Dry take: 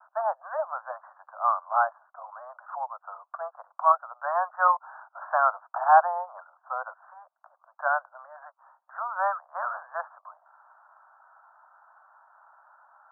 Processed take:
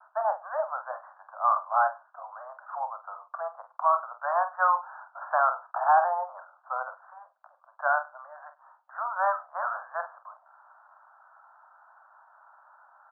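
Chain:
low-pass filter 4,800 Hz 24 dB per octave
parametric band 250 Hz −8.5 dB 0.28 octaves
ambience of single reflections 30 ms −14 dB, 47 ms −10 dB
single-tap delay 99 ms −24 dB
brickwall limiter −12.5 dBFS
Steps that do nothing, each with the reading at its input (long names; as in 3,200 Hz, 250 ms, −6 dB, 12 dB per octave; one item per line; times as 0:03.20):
low-pass filter 4,800 Hz: nothing at its input above 1,800 Hz
parametric band 250 Hz: nothing at its input below 510 Hz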